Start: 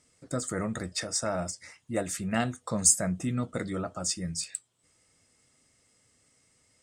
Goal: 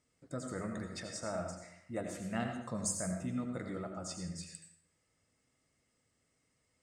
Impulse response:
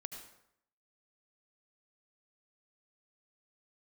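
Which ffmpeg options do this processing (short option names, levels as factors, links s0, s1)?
-filter_complex "[0:a]highshelf=f=4100:g=-8.5[s0];[1:a]atrim=start_sample=2205[s1];[s0][s1]afir=irnorm=-1:irlink=0,volume=0.596"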